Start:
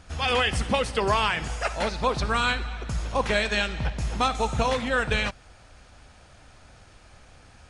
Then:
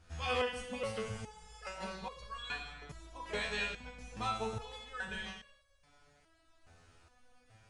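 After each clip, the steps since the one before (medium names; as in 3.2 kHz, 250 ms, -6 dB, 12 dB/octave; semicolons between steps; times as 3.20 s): spectral replace 1.02–1.49 s, 270–9600 Hz after; gated-style reverb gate 350 ms falling, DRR 3.5 dB; resonator arpeggio 2.4 Hz 84–560 Hz; trim -4 dB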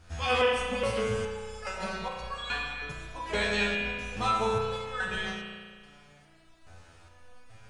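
spring tank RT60 1.7 s, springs 34 ms, chirp 40 ms, DRR 2 dB; trim +7 dB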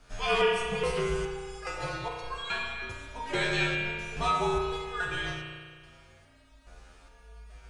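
frequency shift -54 Hz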